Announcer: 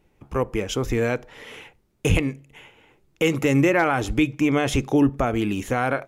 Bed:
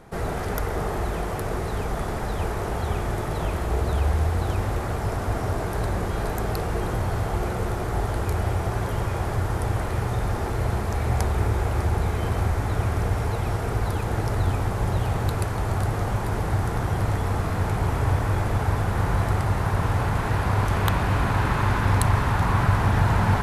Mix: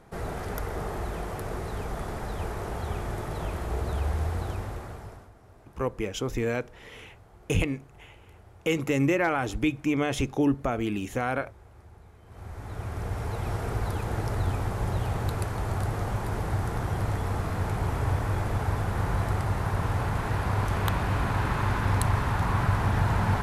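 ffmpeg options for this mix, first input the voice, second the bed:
-filter_complex "[0:a]adelay=5450,volume=-5.5dB[a];[1:a]volume=17.5dB,afade=t=out:st=4.34:d=0.97:silence=0.0794328,afade=t=in:st=12.26:d=1.31:silence=0.0668344[b];[a][b]amix=inputs=2:normalize=0"

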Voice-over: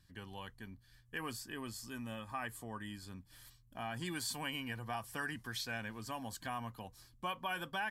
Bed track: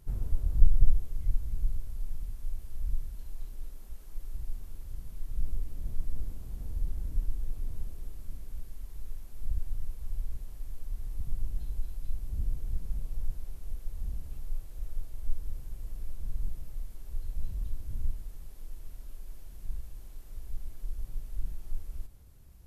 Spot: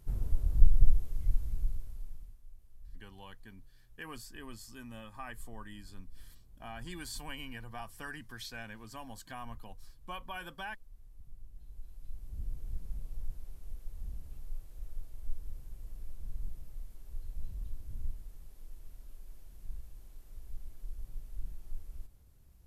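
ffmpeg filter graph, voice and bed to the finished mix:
-filter_complex "[0:a]adelay=2850,volume=-3.5dB[a];[1:a]volume=11dB,afade=t=out:st=1.41:d=1:silence=0.141254,afade=t=in:st=11.52:d=1.17:silence=0.251189[b];[a][b]amix=inputs=2:normalize=0"

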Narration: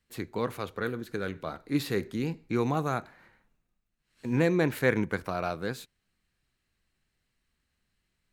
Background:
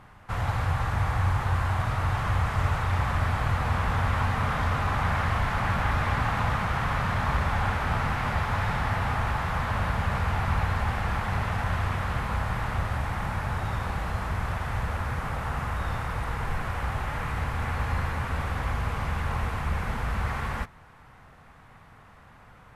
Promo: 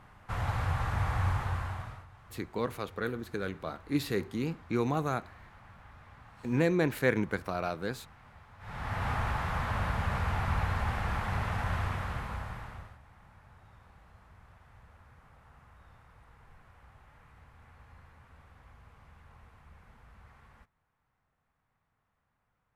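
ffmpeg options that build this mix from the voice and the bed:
-filter_complex "[0:a]adelay=2200,volume=-2dB[a];[1:a]volume=19dB,afade=t=out:st=1.29:d=0.77:silence=0.0668344,afade=t=in:st=8.59:d=0.5:silence=0.0668344,afade=t=out:st=11.78:d=1.2:silence=0.0707946[b];[a][b]amix=inputs=2:normalize=0"

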